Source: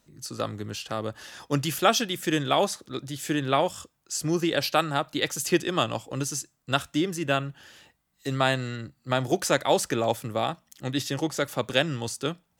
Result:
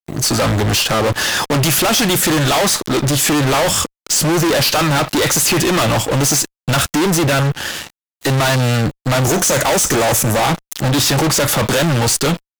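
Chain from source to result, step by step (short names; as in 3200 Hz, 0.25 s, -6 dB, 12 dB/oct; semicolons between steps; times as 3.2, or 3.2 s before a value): 9.23–10.4 resonant high shelf 5100 Hz +6 dB, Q 3; fuzz box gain 45 dB, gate -53 dBFS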